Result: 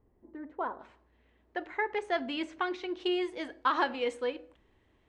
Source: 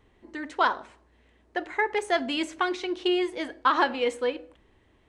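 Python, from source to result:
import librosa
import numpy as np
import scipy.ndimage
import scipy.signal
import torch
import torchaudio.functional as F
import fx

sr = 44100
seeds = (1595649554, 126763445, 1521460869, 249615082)

y = fx.bessel_lowpass(x, sr, hz=fx.steps((0.0, 680.0), (0.79, 3600.0), (2.99, 8000.0)), order=2)
y = y * 10.0 ** (-5.5 / 20.0)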